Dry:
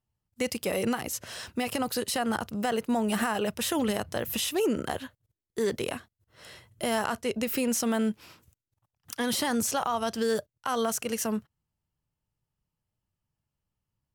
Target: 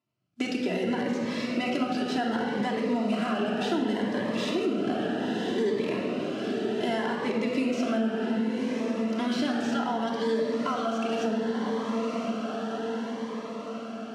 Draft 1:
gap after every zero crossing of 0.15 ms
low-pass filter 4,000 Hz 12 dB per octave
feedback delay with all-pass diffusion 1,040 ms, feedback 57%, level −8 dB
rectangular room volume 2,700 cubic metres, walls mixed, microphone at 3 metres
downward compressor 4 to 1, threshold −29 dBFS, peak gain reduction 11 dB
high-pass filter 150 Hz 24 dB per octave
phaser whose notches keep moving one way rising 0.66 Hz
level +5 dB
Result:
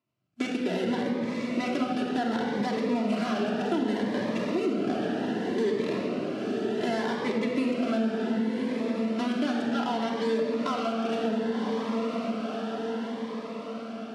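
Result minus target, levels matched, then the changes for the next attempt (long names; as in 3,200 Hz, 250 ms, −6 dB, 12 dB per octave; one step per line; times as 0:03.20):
gap after every zero crossing: distortion +4 dB
change: gap after every zero crossing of 0.04 ms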